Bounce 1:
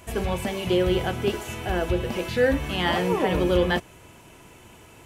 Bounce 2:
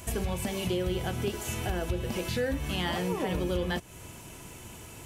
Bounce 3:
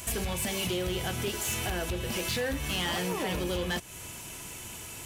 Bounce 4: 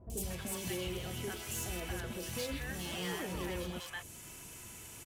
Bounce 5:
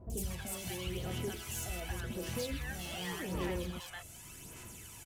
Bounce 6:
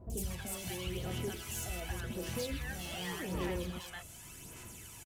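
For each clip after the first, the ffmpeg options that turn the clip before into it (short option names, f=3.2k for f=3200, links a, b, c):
-af "bass=f=250:g=5,treble=f=4k:g=8,acompressor=threshold=-30dB:ratio=3"
-af "tiltshelf=f=1.3k:g=-4.5,volume=29.5dB,asoftclip=hard,volume=-29.5dB,volume=3dB"
-filter_complex "[0:a]acrossover=split=740|3200[a][b][c];[c]adelay=100[d];[b]adelay=230[e];[a][e][d]amix=inputs=3:normalize=0,volume=-7dB"
-af "aphaser=in_gain=1:out_gain=1:delay=1.5:decay=0.46:speed=0.87:type=sinusoidal,volume=-2dB"
-af "aecho=1:1:285:0.0841"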